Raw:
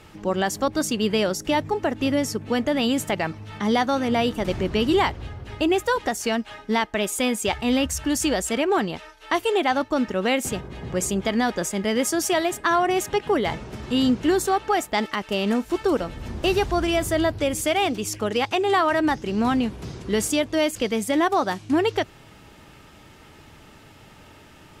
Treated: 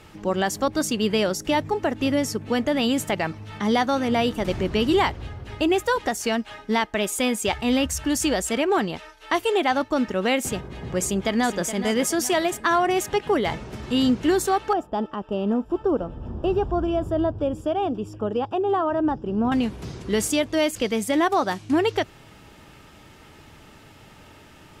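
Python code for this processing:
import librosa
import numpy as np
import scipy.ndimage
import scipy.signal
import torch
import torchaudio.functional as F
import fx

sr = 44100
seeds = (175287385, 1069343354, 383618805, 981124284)

y = fx.echo_throw(x, sr, start_s=11.0, length_s=0.66, ms=420, feedback_pct=45, wet_db=-11.0)
y = fx.moving_average(y, sr, points=21, at=(14.73, 19.52))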